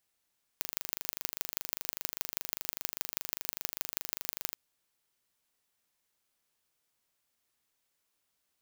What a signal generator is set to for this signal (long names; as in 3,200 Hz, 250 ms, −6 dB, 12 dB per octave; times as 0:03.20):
impulse train 25 per second, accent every 4, −4 dBFS 3.96 s